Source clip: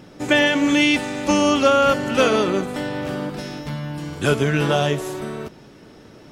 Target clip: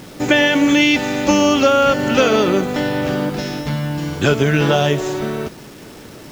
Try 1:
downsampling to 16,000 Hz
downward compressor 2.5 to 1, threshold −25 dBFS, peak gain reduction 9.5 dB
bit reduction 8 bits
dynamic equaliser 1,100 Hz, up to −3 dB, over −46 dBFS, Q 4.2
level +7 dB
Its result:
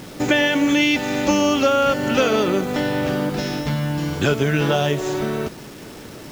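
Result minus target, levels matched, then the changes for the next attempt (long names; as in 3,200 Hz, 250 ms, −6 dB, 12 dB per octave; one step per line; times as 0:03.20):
downward compressor: peak gain reduction +4 dB
change: downward compressor 2.5 to 1, threshold −18.5 dBFS, peak gain reduction 5.5 dB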